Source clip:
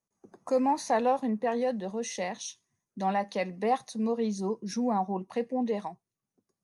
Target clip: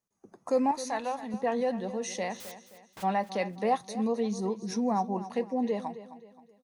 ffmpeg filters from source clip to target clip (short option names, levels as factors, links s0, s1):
-filter_complex "[0:a]asettb=1/sr,asplit=3[s0][s1][s2];[s0]atrim=end=0.714[s3];[s1]atrim=start=0.71:end=1.34,asetpts=PTS-STARTPTS,afade=t=in:d=0.004:c=qsin,afade=t=out:st=0.626:d=0.004:c=qsin,equalizer=f=350:t=o:w=2.6:g=-11.5[s4];[s2]atrim=start=1.336[s5];[s3][s4]acrossfade=d=0.004:c1=hsin:c2=qsin[s6];[s6][s5]acrossfade=d=0.004:c1=qsin:c2=hsin,asplit=3[s7][s8][s9];[s7]afade=t=out:st=2.36:d=0.02[s10];[s8]aeval=exprs='(mod(100*val(0)+1,2)-1)/100':c=same,afade=t=in:st=2.36:d=0.02,afade=t=out:st=3.02:d=0.02[s11];[s9]afade=t=in:st=3.02:d=0.02[s12];[s10][s11][s12]amix=inputs=3:normalize=0,aecho=1:1:263|526|789|1052:0.2|0.0778|0.0303|0.0118"